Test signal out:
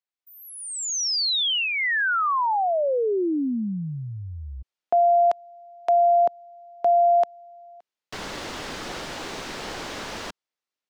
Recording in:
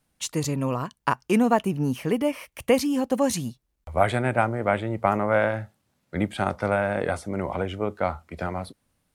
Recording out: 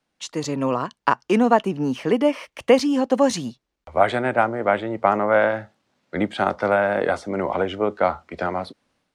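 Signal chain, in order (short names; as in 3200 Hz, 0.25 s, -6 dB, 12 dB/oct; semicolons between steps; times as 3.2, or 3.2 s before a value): dynamic EQ 2400 Hz, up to -4 dB, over -49 dBFS, Q 4; AGC gain up to 7 dB; three-band isolator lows -13 dB, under 210 Hz, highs -21 dB, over 6700 Hz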